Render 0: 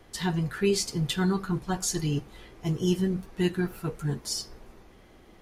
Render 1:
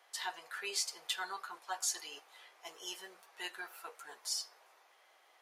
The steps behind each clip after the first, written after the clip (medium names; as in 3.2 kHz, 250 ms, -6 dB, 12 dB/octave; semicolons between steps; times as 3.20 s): high-pass 670 Hz 24 dB/octave; trim -5 dB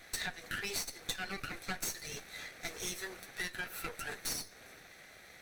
comb filter that takes the minimum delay 0.5 ms; compression 6:1, threshold -49 dBFS, peak gain reduction 16 dB; trim +13 dB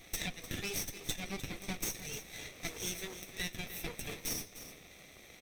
comb filter that takes the minimum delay 0.35 ms; delay 302 ms -13 dB; trim +1.5 dB